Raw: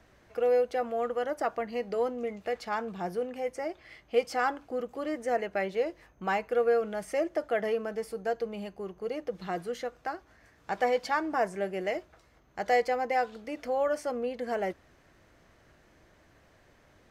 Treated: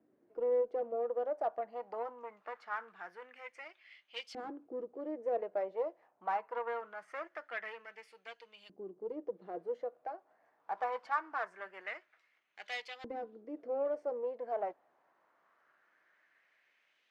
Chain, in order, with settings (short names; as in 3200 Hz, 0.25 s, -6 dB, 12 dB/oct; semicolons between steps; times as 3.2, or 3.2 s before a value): HPF 160 Hz 12 dB/oct; added harmonics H 8 -21 dB, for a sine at -13 dBFS; LFO band-pass saw up 0.23 Hz 280–3500 Hz; gain -2 dB